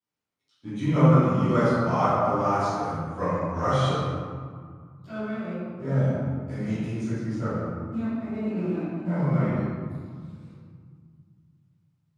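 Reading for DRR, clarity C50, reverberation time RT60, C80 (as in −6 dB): −17.5 dB, −5.0 dB, 1.9 s, −1.5 dB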